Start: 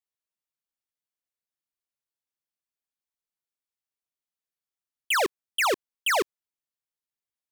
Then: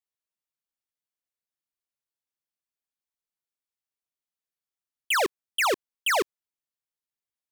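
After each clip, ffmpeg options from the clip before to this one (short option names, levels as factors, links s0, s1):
-af anull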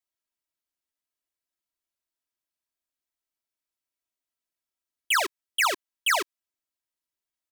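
-filter_complex "[0:a]aecho=1:1:3.1:0.65,acrossover=split=900[s0][s1];[s0]alimiter=level_in=1.68:limit=0.0631:level=0:latency=1:release=311,volume=0.596[s2];[s2][s1]amix=inputs=2:normalize=0"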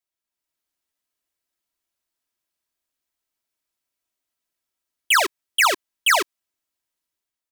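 -af "dynaudnorm=f=120:g=7:m=2.11"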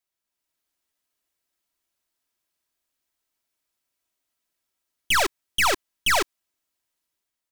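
-af "aeval=exprs='(tanh(12.6*val(0)+0.5)-tanh(0.5))/12.6':c=same,volume=1.68"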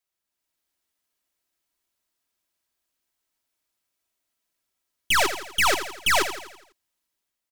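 -af "aecho=1:1:83|166|249|332|415|498:0.316|0.161|0.0823|0.0419|0.0214|0.0109"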